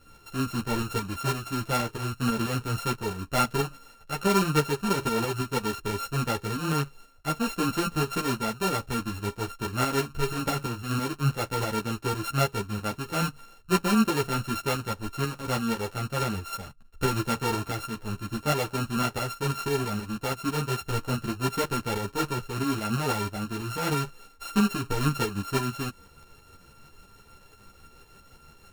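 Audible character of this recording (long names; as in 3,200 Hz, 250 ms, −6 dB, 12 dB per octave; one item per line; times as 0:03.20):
a buzz of ramps at a fixed pitch in blocks of 32 samples
tremolo saw up 6.1 Hz, depth 50%
a shimmering, thickened sound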